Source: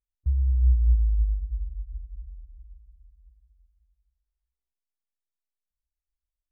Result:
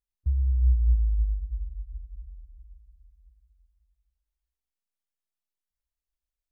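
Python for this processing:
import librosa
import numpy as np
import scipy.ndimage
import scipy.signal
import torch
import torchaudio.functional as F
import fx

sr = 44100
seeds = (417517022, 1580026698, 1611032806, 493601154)

y = fx.dynamic_eq(x, sr, hz=100.0, q=2.9, threshold_db=-42.0, ratio=4.0, max_db=5)
y = y * 10.0 ** (-2.0 / 20.0)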